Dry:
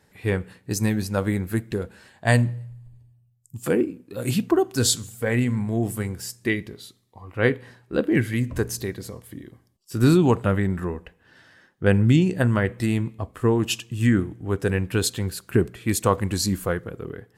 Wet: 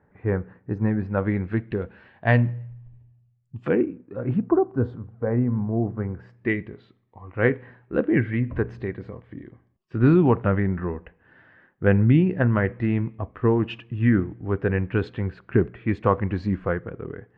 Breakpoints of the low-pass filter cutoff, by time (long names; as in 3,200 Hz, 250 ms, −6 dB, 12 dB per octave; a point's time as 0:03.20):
low-pass filter 24 dB per octave
0:00.85 1,600 Hz
0:01.49 2,700 Hz
0:03.65 2,700 Hz
0:04.55 1,200 Hz
0:05.86 1,200 Hz
0:06.49 2,300 Hz